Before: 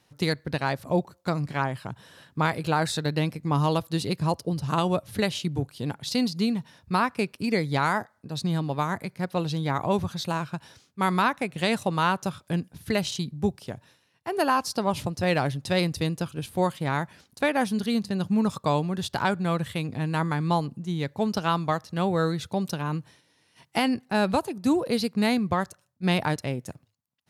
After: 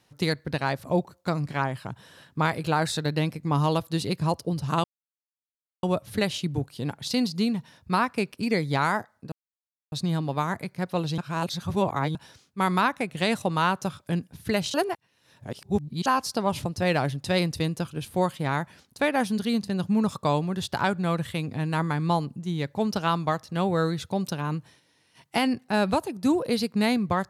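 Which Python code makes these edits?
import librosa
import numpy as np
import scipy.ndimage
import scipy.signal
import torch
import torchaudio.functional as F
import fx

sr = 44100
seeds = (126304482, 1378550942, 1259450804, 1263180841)

y = fx.edit(x, sr, fx.insert_silence(at_s=4.84, length_s=0.99),
    fx.insert_silence(at_s=8.33, length_s=0.6),
    fx.reverse_span(start_s=9.59, length_s=0.97),
    fx.reverse_span(start_s=13.15, length_s=1.32), tone=tone)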